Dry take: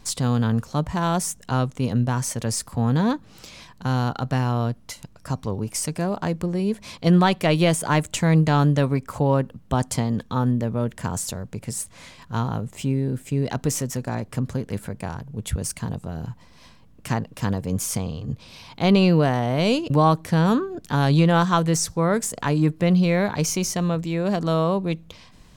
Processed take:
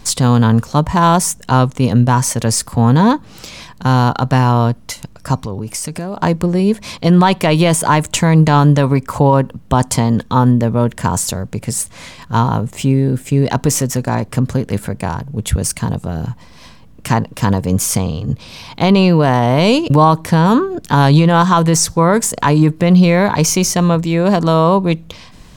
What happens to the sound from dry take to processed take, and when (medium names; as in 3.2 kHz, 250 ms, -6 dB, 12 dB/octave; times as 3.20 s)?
5.44–6.20 s: compression 4:1, threshold -30 dBFS
whole clip: dynamic bell 970 Hz, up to +7 dB, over -44 dBFS, Q 5.3; loudness maximiser +11 dB; trim -1 dB